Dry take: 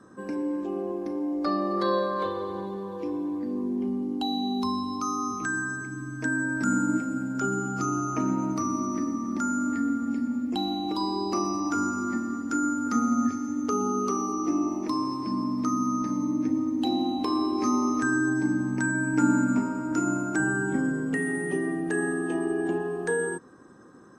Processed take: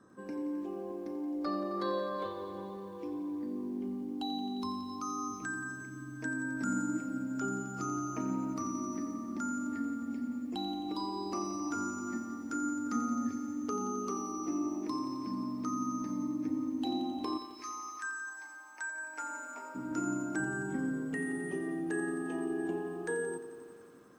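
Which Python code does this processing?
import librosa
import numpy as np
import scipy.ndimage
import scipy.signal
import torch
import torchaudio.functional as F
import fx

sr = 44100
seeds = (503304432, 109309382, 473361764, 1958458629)

y = fx.highpass(x, sr, hz=fx.line((17.37, 1400.0), (19.74, 490.0)), slope=24, at=(17.37, 19.74), fade=0.02)
y = fx.echo_crushed(y, sr, ms=88, feedback_pct=80, bits=9, wet_db=-13)
y = F.gain(torch.from_numpy(y), -8.5).numpy()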